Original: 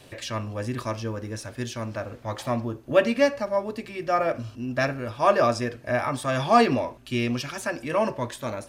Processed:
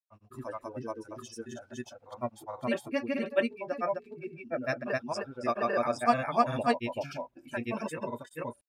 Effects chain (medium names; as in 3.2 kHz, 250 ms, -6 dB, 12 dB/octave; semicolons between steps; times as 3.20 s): spectral noise reduction 19 dB; granulator, spray 473 ms, pitch spread up and down by 0 st; trim -5 dB